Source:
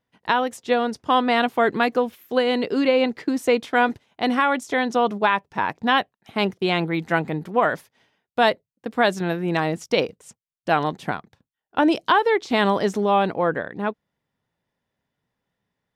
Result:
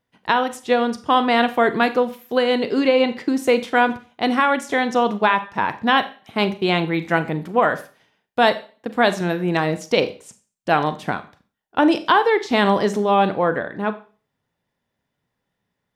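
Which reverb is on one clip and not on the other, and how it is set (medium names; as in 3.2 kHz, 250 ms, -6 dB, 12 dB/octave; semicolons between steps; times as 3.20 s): Schroeder reverb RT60 0.38 s, combs from 30 ms, DRR 11 dB; trim +2 dB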